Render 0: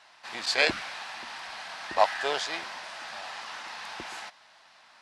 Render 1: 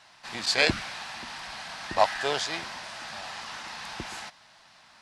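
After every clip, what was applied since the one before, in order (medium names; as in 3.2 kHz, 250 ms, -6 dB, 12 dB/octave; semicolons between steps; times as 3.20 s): tone controls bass +13 dB, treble +4 dB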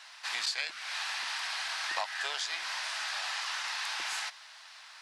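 high-pass 1.2 kHz 12 dB/octave; compression 20:1, threshold -36 dBFS, peak gain reduction 19.5 dB; trim +6 dB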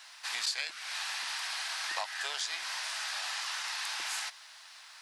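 treble shelf 7.9 kHz +11 dB; trim -2.5 dB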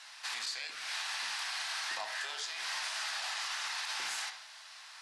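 low-pass 12 kHz 12 dB/octave; peak limiter -28.5 dBFS, peak gain reduction 9 dB; on a send at -4.5 dB: reverberation, pre-delay 3 ms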